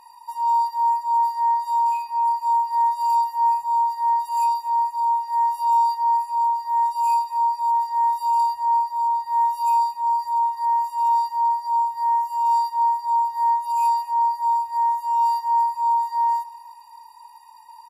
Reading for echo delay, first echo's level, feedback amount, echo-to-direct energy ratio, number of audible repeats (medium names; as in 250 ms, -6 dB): 233 ms, -18.5 dB, 51%, -17.0 dB, 3